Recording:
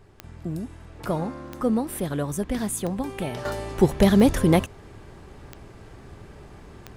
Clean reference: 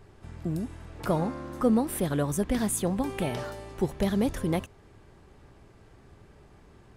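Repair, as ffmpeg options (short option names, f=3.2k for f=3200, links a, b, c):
-af "adeclick=t=4,asetnsamples=n=441:p=0,asendcmd='3.45 volume volume -9.5dB',volume=0dB"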